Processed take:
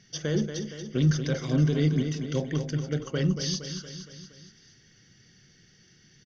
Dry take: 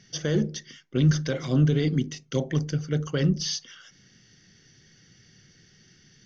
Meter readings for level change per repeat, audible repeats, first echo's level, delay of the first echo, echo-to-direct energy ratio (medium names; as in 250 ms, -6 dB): -5.0 dB, 5, -8.0 dB, 233 ms, -6.5 dB